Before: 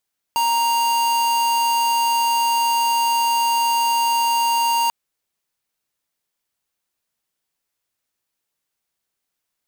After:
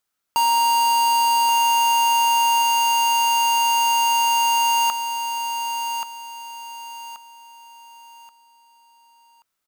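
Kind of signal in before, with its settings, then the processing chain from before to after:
tone square 933 Hz −18.5 dBFS 4.54 s
parametric band 1,300 Hz +8.5 dB 0.33 octaves
on a send: repeating echo 1,130 ms, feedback 32%, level −7.5 dB

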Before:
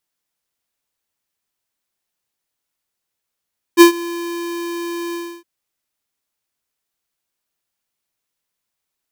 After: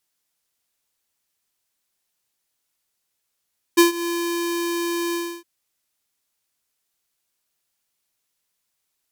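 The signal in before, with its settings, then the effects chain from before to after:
note with an ADSR envelope square 342 Hz, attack 40 ms, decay 107 ms, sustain −21.5 dB, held 1.37 s, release 293 ms −3.5 dBFS
parametric band 9,300 Hz +5 dB 2.9 octaves
downward compressor 6 to 1, threshold −14 dBFS

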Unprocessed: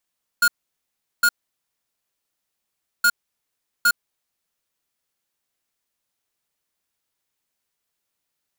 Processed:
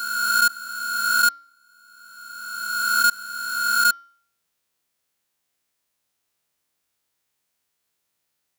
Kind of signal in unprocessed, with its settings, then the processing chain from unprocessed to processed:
beeps in groups square 1,430 Hz, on 0.06 s, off 0.75 s, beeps 2, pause 1.75 s, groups 2, −15.5 dBFS
peak hold with a rise ahead of every peak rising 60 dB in 2.02 s
high-pass filter 45 Hz
hum removal 277.2 Hz, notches 22

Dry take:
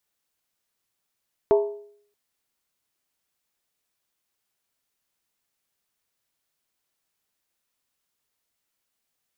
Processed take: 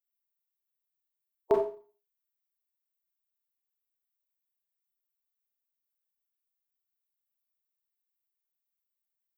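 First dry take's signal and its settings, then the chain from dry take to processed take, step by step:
struck skin, lowest mode 412 Hz, decay 0.61 s, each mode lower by 7 dB, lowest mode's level −12.5 dB
spectral dynamics exaggerated over time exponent 3
spectral tilt +2 dB per octave
four-comb reverb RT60 0.39 s, combs from 29 ms, DRR 1 dB

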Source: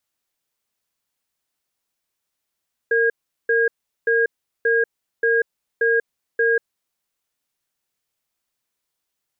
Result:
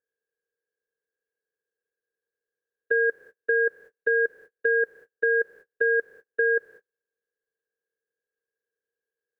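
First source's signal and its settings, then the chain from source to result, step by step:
tone pair in a cadence 460 Hz, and 1,630 Hz, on 0.19 s, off 0.39 s, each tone −17.5 dBFS 3.68 s
compressor on every frequency bin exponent 0.4
noise gate −42 dBFS, range −40 dB
downward compressor 1.5 to 1, threshold −26 dBFS

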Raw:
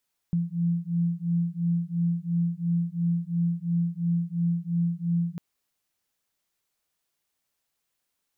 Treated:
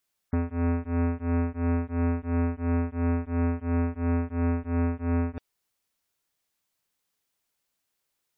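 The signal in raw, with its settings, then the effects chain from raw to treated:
two tones that beat 169 Hz, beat 2.9 Hz, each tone −26.5 dBFS 5.05 s
sub-harmonics by changed cycles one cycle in 2, inverted
gate on every frequency bin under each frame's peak −30 dB strong

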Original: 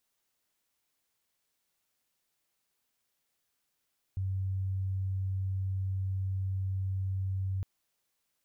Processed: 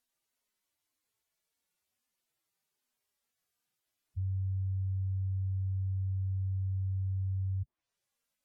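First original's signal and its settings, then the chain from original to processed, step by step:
tone sine 95.4 Hz −29.5 dBFS 3.46 s
harmonic-percussive split with one part muted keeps harmonic
treble cut that deepens with the level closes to 300 Hz, closed at −31.5 dBFS

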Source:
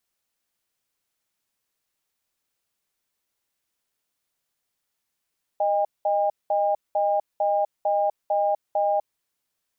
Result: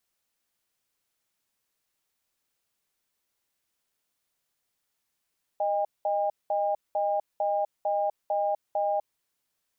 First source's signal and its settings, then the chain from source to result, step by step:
tone pair in a cadence 618 Hz, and 806 Hz, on 0.25 s, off 0.20 s, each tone −22 dBFS 3.55 s
brickwall limiter −20.5 dBFS

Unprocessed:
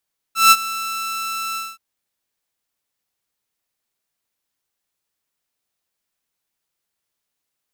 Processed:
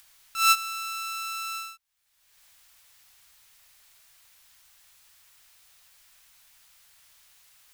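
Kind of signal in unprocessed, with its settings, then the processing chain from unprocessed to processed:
note with an ADSR envelope saw 1,330 Hz, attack 162 ms, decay 45 ms, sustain −17.5 dB, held 1.21 s, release 215 ms −3.5 dBFS
guitar amp tone stack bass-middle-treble 10-0-10
upward compression, threshold −28 dBFS
high-shelf EQ 2,900 Hz −8 dB

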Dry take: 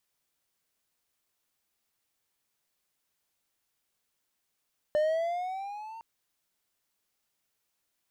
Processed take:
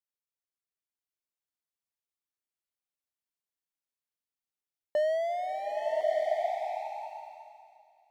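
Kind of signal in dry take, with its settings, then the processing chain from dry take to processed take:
pitch glide with a swell triangle, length 1.06 s, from 597 Hz, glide +7.5 semitones, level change −19.5 dB, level −20 dB
noise gate with hold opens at −38 dBFS
slow-attack reverb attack 1,180 ms, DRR −1.5 dB

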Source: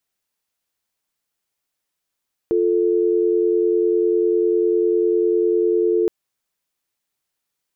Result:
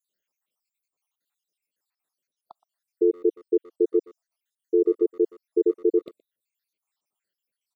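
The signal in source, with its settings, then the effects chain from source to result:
call progress tone dial tone, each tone −17.5 dBFS 3.57 s
time-frequency cells dropped at random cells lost 77%
high-pass filter 170 Hz 12 dB per octave
far-end echo of a speakerphone 120 ms, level −22 dB

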